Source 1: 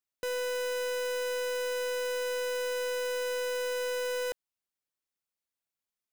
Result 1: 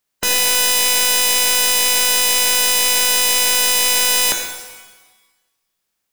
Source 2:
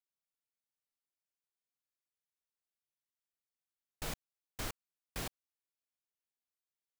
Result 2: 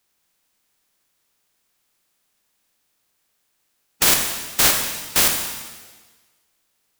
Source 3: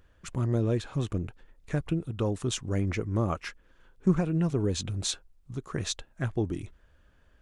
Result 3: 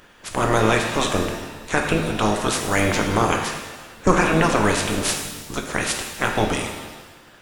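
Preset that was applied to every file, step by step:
ceiling on every frequency bin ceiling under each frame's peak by 28 dB
reverb with rising layers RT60 1.2 s, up +7 semitones, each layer −8 dB, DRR 2.5 dB
normalise the peak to −1.5 dBFS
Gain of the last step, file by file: +15.0, +23.0, +7.0 decibels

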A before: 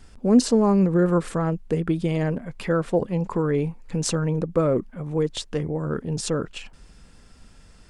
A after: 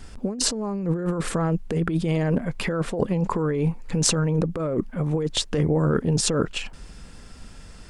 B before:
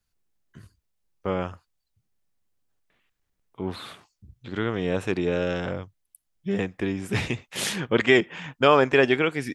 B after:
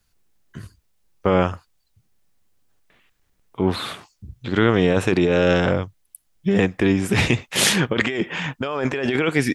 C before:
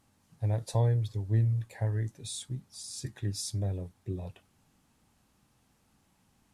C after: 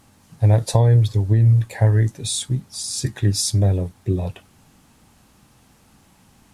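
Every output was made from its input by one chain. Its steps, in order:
compressor whose output falls as the input rises −26 dBFS, ratio −1
normalise the peak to −1.5 dBFS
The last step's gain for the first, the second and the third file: +3.0, +7.5, +14.0 decibels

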